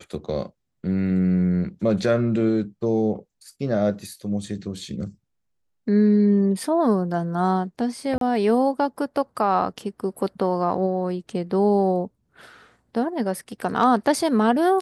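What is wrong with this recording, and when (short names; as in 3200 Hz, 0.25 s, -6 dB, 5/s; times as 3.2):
8.18–8.21 gap 32 ms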